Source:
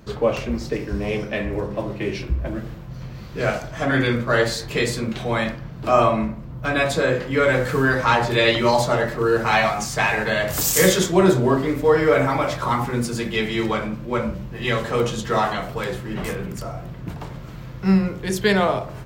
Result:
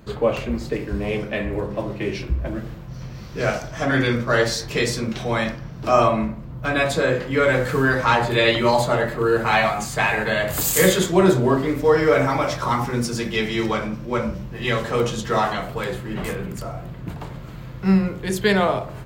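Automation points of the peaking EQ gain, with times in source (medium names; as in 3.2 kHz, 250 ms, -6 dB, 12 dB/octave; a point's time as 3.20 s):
peaking EQ 5.6 kHz 0.25 oct
-8.5 dB
from 1.69 s 0 dB
from 2.88 s +8 dB
from 6.08 s -1.5 dB
from 8.22 s -10 dB
from 11.08 s -1 dB
from 11.80 s +7.5 dB
from 14.42 s +1.5 dB
from 15.62 s -5 dB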